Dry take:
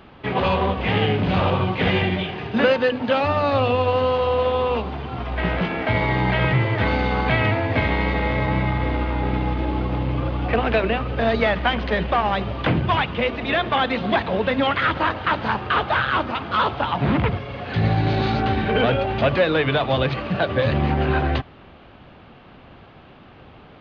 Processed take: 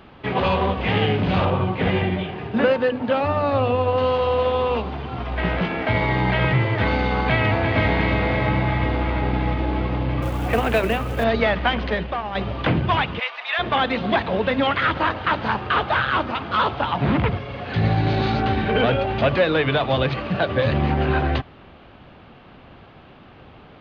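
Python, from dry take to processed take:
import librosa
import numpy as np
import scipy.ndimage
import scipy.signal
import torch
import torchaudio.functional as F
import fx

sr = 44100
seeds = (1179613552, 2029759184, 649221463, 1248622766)

y = fx.high_shelf(x, sr, hz=2500.0, db=-9.5, at=(1.45, 3.98))
y = fx.echo_throw(y, sr, start_s=7.14, length_s=0.65, ms=350, feedback_pct=80, wet_db=-6.5)
y = fx.quant_companded(y, sr, bits=6, at=(10.22, 11.24))
y = fx.highpass(y, sr, hz=830.0, slope=24, at=(13.18, 13.58), fade=0.02)
y = fx.edit(y, sr, fx.fade_out_to(start_s=11.87, length_s=0.48, curve='qua', floor_db=-8.5), tone=tone)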